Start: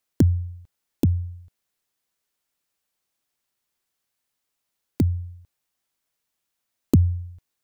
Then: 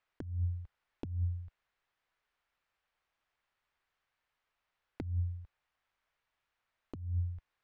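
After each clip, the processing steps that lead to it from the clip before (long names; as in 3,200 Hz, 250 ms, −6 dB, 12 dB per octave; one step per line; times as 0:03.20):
low-pass filter 1,900 Hz 12 dB per octave
parametric band 240 Hz −14.5 dB 2.7 octaves
compressor whose output falls as the input rises −37 dBFS, ratio −1
level +1 dB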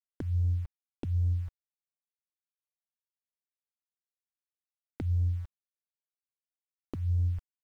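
in parallel at −9 dB: soft clipping −39 dBFS, distortion −8 dB
on the sum: brickwall limiter −31 dBFS, peak gain reduction 7 dB
centre clipping without the shift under −58.5 dBFS
level +8 dB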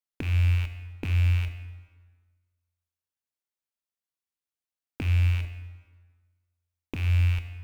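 loose part that buzzes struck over −33 dBFS, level −28 dBFS
in parallel at −8 dB: bit reduction 7 bits
on the sum: dense smooth reverb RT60 1.5 s, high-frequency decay 0.75×, DRR 8 dB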